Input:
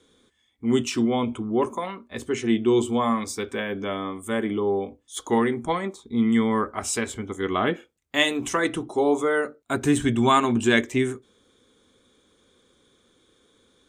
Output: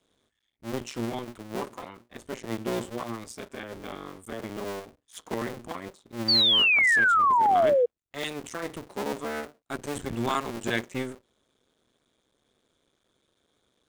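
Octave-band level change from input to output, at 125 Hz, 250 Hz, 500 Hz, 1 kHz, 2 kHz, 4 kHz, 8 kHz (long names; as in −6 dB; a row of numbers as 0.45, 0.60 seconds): −8.0, −12.0, −5.5, 0.0, +2.5, +6.0, −9.0 decibels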